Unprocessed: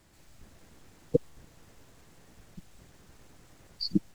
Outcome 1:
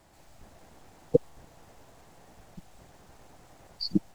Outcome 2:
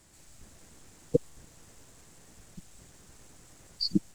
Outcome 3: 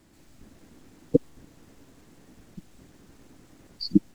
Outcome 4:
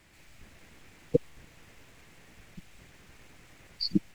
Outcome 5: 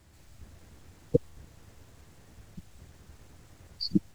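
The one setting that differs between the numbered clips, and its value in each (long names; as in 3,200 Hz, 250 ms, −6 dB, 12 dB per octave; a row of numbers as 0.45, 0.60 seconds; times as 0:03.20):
parametric band, centre frequency: 750, 7,900, 270, 2,300, 80 Hertz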